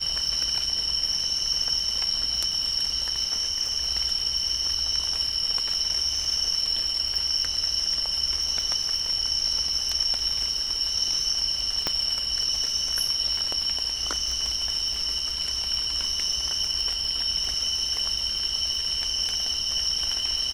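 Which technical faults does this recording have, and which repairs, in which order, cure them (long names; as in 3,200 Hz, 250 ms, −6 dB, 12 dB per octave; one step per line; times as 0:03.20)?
surface crackle 39 per second −30 dBFS
0:11.87: click −9 dBFS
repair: click removal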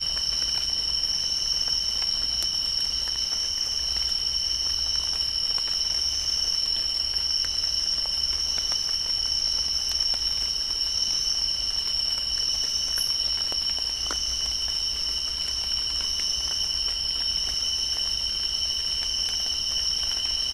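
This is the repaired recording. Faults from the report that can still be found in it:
0:11.87: click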